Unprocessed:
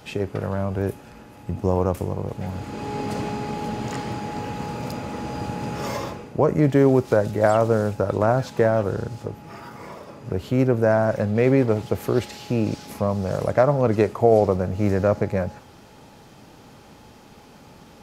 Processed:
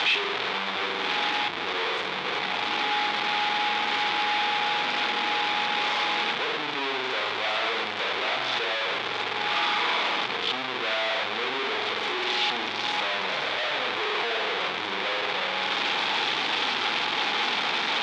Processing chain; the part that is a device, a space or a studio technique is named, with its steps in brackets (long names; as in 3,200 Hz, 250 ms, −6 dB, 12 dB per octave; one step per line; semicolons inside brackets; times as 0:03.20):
flutter between parallel walls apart 8 metres, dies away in 0.6 s
home computer beeper (sign of each sample alone; loudspeaker in its box 570–4,200 Hz, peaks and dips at 580 Hz −9 dB, 2,300 Hz +5 dB, 3,500 Hz +8 dB)
level −2.5 dB